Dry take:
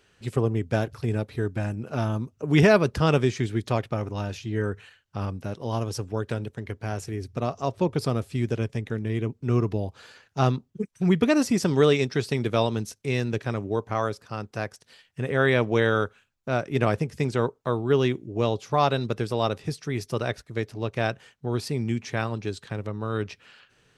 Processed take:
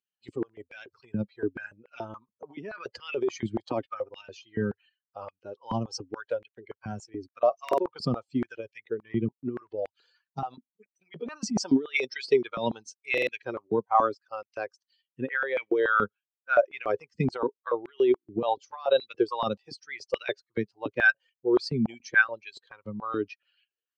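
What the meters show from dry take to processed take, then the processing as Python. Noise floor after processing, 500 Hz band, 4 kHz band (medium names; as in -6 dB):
under -85 dBFS, -3.0 dB, -5.0 dB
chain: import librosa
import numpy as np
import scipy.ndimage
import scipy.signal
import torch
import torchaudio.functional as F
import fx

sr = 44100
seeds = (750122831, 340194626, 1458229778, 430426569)

y = fx.bin_expand(x, sr, power=2.0)
y = scipy.signal.sosfilt(scipy.signal.bessel(8, 4100.0, 'lowpass', norm='mag', fs=sr, output='sos'), y)
y = fx.over_compress(y, sr, threshold_db=-34.0, ratio=-1.0)
y = fx.buffer_glitch(y, sr, at_s=(7.64, 13.13), block=2048, repeats=2)
y = fx.filter_held_highpass(y, sr, hz=7.0, low_hz=200.0, high_hz=2200.0)
y = y * 10.0 ** (5.5 / 20.0)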